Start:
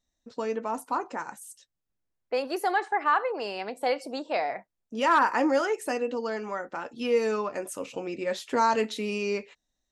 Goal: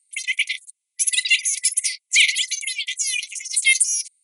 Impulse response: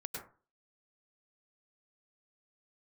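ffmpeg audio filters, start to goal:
-filter_complex "[0:a]afftfilt=real='re*between(b*sr/4096,840,4600)':imag='im*between(b*sr/4096,840,4600)':win_size=4096:overlap=0.75,asplit=2[s0][s1];[s1]alimiter=limit=0.0841:level=0:latency=1:release=256,volume=1[s2];[s0][s2]amix=inputs=2:normalize=0,aexciter=amount=5:drive=5.9:freq=3100,asetrate=103194,aresample=44100,volume=1.78"

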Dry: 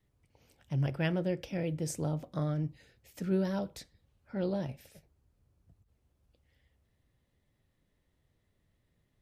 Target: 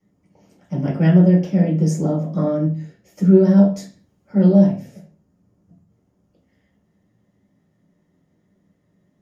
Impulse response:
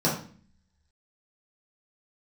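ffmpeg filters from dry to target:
-filter_complex "[0:a]asettb=1/sr,asplit=3[s0][s1][s2];[s0]atrim=end=3.774[s3];[s1]atrim=start=3.77:end=4.69,asetpts=PTS-STARTPTS,afade=t=in:d=0.004:c=qsin,afade=t=out:st=0.916:d=0.004:c=qsin,highshelf=f=5100:g=7[s4];[s2]atrim=start=4.686[s5];[s3][s4]acrossfade=d=0.004:c1=hsin:c2=qsin[s6];[s6][s5]acrossfade=d=0.004:c1=qsin:c2=hsin[s7];[1:a]atrim=start_sample=2205,afade=t=out:st=0.35:d=0.01,atrim=end_sample=15876,asetrate=52920,aresample=44100[s8];[s7][s8]afir=irnorm=-1:irlink=0,volume=0.668"

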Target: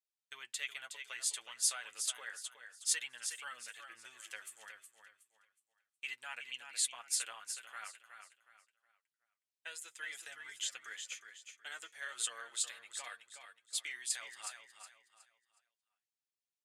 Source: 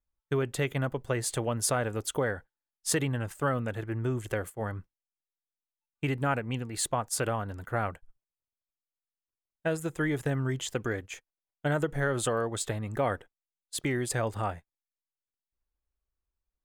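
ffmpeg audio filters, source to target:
-filter_complex "[0:a]asuperpass=centerf=5300:order=4:qfactor=0.67,asplit=2[s0][s1];[s1]aecho=0:1:367|734|1101|1468:0.398|0.119|0.0358|0.0107[s2];[s0][s2]amix=inputs=2:normalize=0,flanger=delay=8.3:depth=1.1:regen=26:speed=0.31:shape=sinusoidal,volume=1.33"

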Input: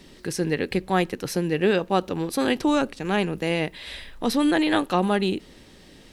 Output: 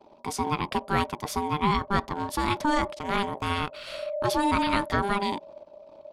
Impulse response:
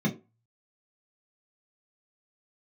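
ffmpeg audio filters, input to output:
-af "anlmdn=0.0251,asubboost=boost=5.5:cutoff=55,aeval=exprs='val(0)*sin(2*PI*600*n/s)':c=same"

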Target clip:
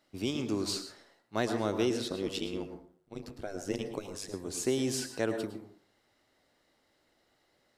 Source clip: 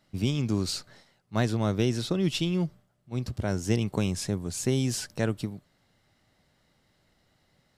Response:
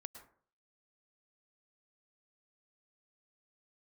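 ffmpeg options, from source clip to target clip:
-filter_complex "[0:a]lowshelf=f=230:t=q:w=1.5:g=-9.5,asettb=1/sr,asplit=3[s0][s1][s2];[s0]atrim=end=2.084[s3];[s1]atrim=start=2.08:end=4.34,asetpts=PTS-STARTPTS,afade=t=in:d=0.004:c=qsin,afade=t=out:st=2.256:d=0.004:c=qsin,tremolo=f=99:d=1[s4];[s2]atrim=start=4.336[s5];[s3][s4]acrossfade=d=0.004:c1=hsin:c2=qsin[s6];[s6][s5]acrossfade=d=0.004:c1=qsin:c2=hsin[s7];[1:a]atrim=start_sample=2205[s8];[s7][s8]afir=irnorm=-1:irlink=0,volume=1.41"

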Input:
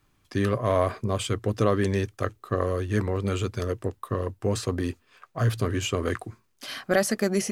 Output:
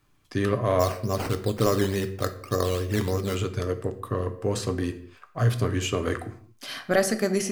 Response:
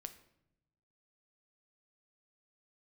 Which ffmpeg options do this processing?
-filter_complex "[0:a]asplit=3[s0][s1][s2];[s0]afade=t=out:st=0.79:d=0.02[s3];[s1]acrusher=samples=10:mix=1:aa=0.000001:lfo=1:lforange=6:lforate=3.4,afade=t=in:st=0.79:d=0.02,afade=t=out:st=3.34:d=0.02[s4];[s2]afade=t=in:st=3.34:d=0.02[s5];[s3][s4][s5]amix=inputs=3:normalize=0[s6];[1:a]atrim=start_sample=2205,afade=t=out:st=0.3:d=0.01,atrim=end_sample=13671[s7];[s6][s7]afir=irnorm=-1:irlink=0,volume=1.78"

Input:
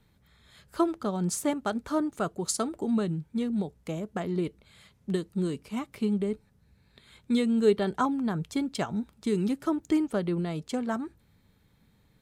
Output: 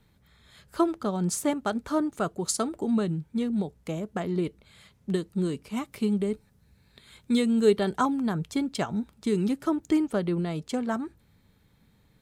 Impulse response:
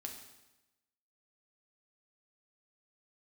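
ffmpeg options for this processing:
-filter_complex "[0:a]asettb=1/sr,asplit=3[s0][s1][s2];[s0]atrim=end=5.754[s3];[s1]atrim=start=5.75:end=8.34,asetpts=PTS-STARTPTS,afade=t=in:d=0.004:c=qsin,afade=t=out:st=2.586:d=0.004:c=qsin,highshelf=f=5100:g=5.5[s4];[s2]atrim=start=8.336[s5];[s3][s4]acrossfade=d=0.004:c1=hsin:c2=qsin[s6];[s6][s5]acrossfade=d=0.004:c1=qsin:c2=hsin,volume=1.19"

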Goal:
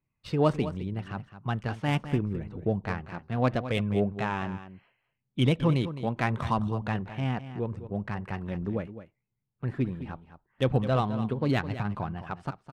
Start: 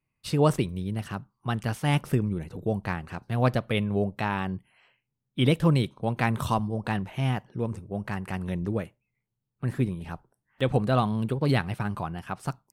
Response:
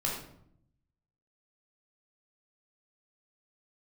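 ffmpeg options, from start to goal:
-af "aphaser=in_gain=1:out_gain=1:delay=4.5:decay=0.25:speed=0.75:type=triangular,adynamicsmooth=sensitivity=2.5:basefreq=3100,aecho=1:1:211:0.237,volume=0.794"

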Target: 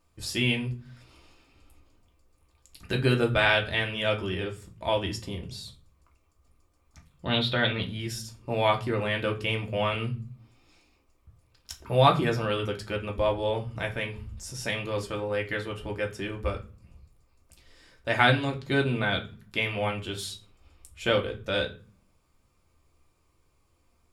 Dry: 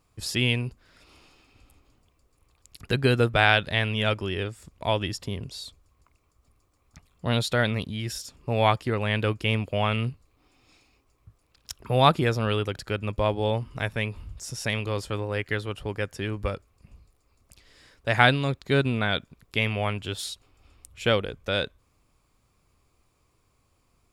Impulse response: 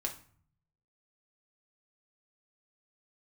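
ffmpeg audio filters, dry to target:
-filter_complex "[0:a]asettb=1/sr,asplit=3[s0][s1][s2];[s0]atrim=end=7.254[s3];[s1]atrim=start=7.25:end=7.83,asetpts=PTS-STARTPTS,afade=t=in:d=0.004:c=qsin,afade=t=out:st=0.576:d=0.004:c=qsin,highshelf=f=5000:t=q:w=3:g=-11.5[s4];[s2]atrim=start=7.826[s5];[s3][s4]acrossfade=d=0.004:c1=hsin:c2=qsin[s6];[s6][s5]acrossfade=d=0.004:c1=qsin:c2=hsin[s7];[1:a]atrim=start_sample=2205,asetrate=61740,aresample=44100[s8];[s7][s8]afir=irnorm=-1:irlink=0"

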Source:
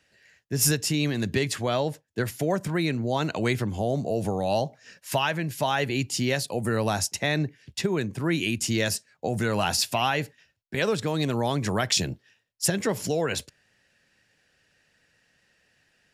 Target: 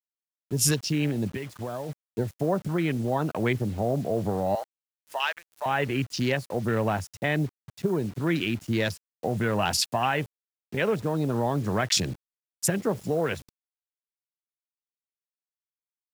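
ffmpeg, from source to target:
-filter_complex "[0:a]asettb=1/sr,asplit=3[s0][s1][s2];[s0]atrim=end=4.554[s3];[s1]atrim=start=4.55:end=5.66,asetpts=PTS-STARTPTS,afade=t=in:d=0.004:c=qsin,afade=t=out:st=1.106:d=0.004:c=qsin,highpass=900[s4];[s2]atrim=start=5.656[s5];[s3][s4]acrossfade=d=0.004:c1=hsin:c2=qsin[s6];[s6][s5]acrossfade=d=0.004:c1=qsin:c2=hsin,afwtdn=0.0251,asplit=3[s7][s8][s9];[s7]afade=t=out:st=1.28:d=0.02[s10];[s8]acompressor=threshold=0.0251:ratio=4,afade=t=in:st=1.28:d=0.02,afade=t=out:st=1.88:d=0.02[s11];[s9]afade=t=in:st=1.88:d=0.02[s12];[s10][s11][s12]amix=inputs=3:normalize=0,asettb=1/sr,asplit=3[s13][s14][s15];[s13]atrim=end=8.444[s16];[s14]atrim=start=8.44:end=8.85,asetpts=PTS-STARTPTS,afade=t=in:d=0.004:c=qsin,afade=t=out:st=0.406:d=0.004:c=qsin,highshelf=f=4200:g=-9[s17];[s15]atrim=start=8.846[s18];[s16][s17]acrossfade=d=0.004:c1=hsin:c2=qsin[s19];[s19][s18]acrossfade=d=0.004:c1=qsin:c2=hsin,acrusher=bits=7:mix=0:aa=0.000001"

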